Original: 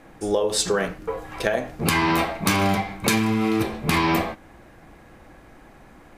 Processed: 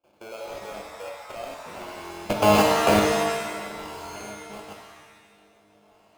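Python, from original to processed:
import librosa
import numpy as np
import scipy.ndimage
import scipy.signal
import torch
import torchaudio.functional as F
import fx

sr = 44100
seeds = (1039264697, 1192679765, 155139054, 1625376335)

p1 = fx.doppler_pass(x, sr, speed_mps=25, closest_m=3.8, pass_at_s=2.69)
p2 = fx.high_shelf(p1, sr, hz=7400.0, db=-7.0)
p3 = fx.echo_swing(p2, sr, ms=1321, ratio=1.5, feedback_pct=33, wet_db=-20.5)
p4 = fx.rider(p3, sr, range_db=4, speed_s=0.5)
p5 = p3 + (p4 * librosa.db_to_amplitude(1.5))
p6 = scipy.signal.sosfilt(scipy.signal.butter(4, 89.0, 'highpass', fs=sr, output='sos'), p5)
p7 = fx.level_steps(p6, sr, step_db=22)
p8 = fx.sample_hold(p7, sr, seeds[0], rate_hz=1900.0, jitter_pct=0)
p9 = fx.graphic_eq_15(p8, sr, hz=(160, 630, 2500), db=(-8, 11, 6))
p10 = fx.buffer_glitch(p9, sr, at_s=(1.97, 3.88, 4.75), block=1024, repeats=11)
y = fx.rev_shimmer(p10, sr, seeds[1], rt60_s=1.1, semitones=7, shimmer_db=-2, drr_db=2.0)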